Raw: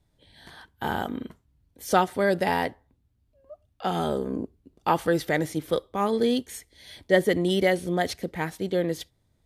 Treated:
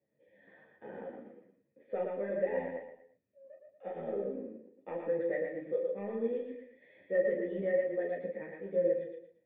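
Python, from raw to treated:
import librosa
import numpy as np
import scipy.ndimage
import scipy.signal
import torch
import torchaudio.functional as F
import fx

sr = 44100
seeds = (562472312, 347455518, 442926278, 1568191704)

p1 = fx.law_mismatch(x, sr, coded='mu')
p2 = scipy.signal.sosfilt(scipy.signal.butter(4, 160.0, 'highpass', fs=sr, output='sos'), p1)
p3 = fx.low_shelf(p2, sr, hz=450.0, db=9.0)
p4 = fx.level_steps(p3, sr, step_db=11)
p5 = p3 + F.gain(torch.from_numpy(p4), 0.5).numpy()
p6 = 10.0 ** (-3.5 / 20.0) * np.tanh(p5 / 10.0 ** (-3.5 / 20.0))
p7 = fx.formant_cascade(p6, sr, vowel='e')
p8 = fx.doubler(p7, sr, ms=35.0, db=-6.0)
p9 = fx.echo_feedback(p8, sr, ms=115, feedback_pct=34, wet_db=-3.5)
p10 = fx.ensemble(p9, sr)
y = F.gain(torch.from_numpy(p10), -8.0).numpy()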